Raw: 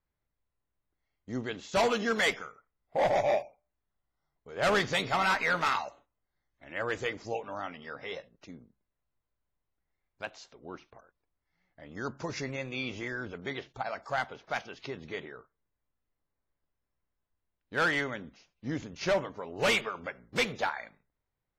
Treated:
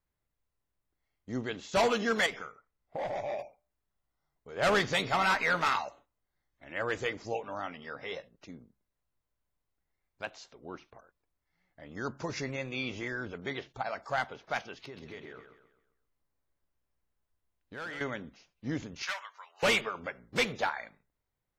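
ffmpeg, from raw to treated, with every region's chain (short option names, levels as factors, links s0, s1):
-filter_complex "[0:a]asettb=1/sr,asplit=3[s0][s1][s2];[s0]atrim=end=2.264[s3];[s1]atrim=start=2.26:end=3.39,asetpts=PTS-STARTPTS,afade=t=in:d=0.004:c=qsin,afade=t=out:st=1.126:d=0.004:c=qsin,highshelf=f=8700:g=-9,acompressor=threshold=0.0224:ratio=6:attack=3.2:release=140:knee=1:detection=peak[s4];[s2]atrim=start=3.386[s5];[s3][s4]acrossfade=d=0.004:c1=hsin:c2=qsin[s6];[s6][s5]acrossfade=d=0.004:c1=qsin:c2=hsin,asettb=1/sr,asplit=3[s7][s8][s9];[s7]atrim=end=14.834[s10];[s8]atrim=start=14.83:end=18.01,asetpts=PTS-STARTPTS,afade=t=in:d=0.004:c=qsin,afade=t=out:st=3.176:d=0.004:c=qsin,acompressor=threshold=0.00708:ratio=3:attack=3.2:release=140:knee=1:detection=peak,volume=47.3,asoftclip=hard,volume=0.0211,aecho=1:1:132|264|396|528|660:0.376|0.154|0.0632|0.0259|0.0106,atrim=end_sample=140238[s11];[s9]atrim=start=18.006[s12];[s10][s11]acrossfade=d=0.004:c1=hsin:c2=qsin[s13];[s13][s12]acrossfade=d=0.004:c1=qsin:c2=hsin,asettb=1/sr,asplit=3[s14][s15][s16];[s14]atrim=end=19.024[s17];[s15]atrim=start=19.02:end=19.63,asetpts=PTS-STARTPTS,afade=t=in:d=0.004:c=qsin,afade=t=out:st=0.606:d=0.004:c=qsin,highpass=f=1100:w=0.5412,highpass=f=1100:w=1.3066,aeval=exprs='clip(val(0),-1,0.0398)':c=same[s18];[s16]atrim=start=19.626[s19];[s17][s18]acrossfade=d=0.004:c1=hsin:c2=qsin[s20];[s20][s19]acrossfade=d=0.004:c1=qsin:c2=hsin"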